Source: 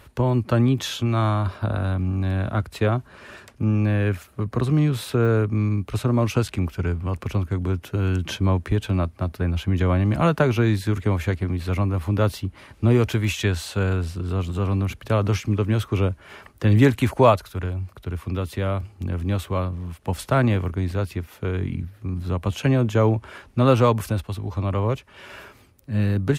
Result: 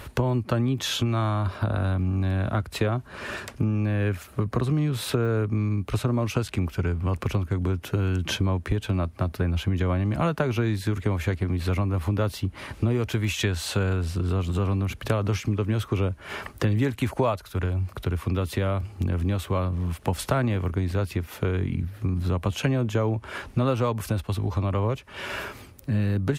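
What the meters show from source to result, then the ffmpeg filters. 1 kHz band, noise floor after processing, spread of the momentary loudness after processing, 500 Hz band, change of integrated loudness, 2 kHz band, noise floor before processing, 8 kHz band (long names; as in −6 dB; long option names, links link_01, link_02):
−4.5 dB, −47 dBFS, 4 LU, −4.5 dB, −3.5 dB, −2.0 dB, −52 dBFS, +0.5 dB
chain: -af "acompressor=threshold=-32dB:ratio=4,volume=8.5dB"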